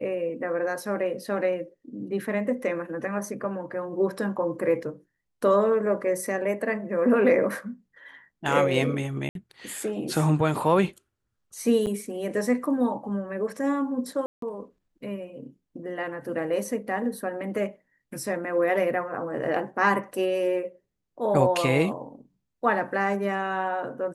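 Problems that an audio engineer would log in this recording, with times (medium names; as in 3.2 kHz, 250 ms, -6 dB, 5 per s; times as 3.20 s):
9.29–9.35 s: dropout 62 ms
11.86–11.87 s: dropout 8.5 ms
14.26–14.42 s: dropout 163 ms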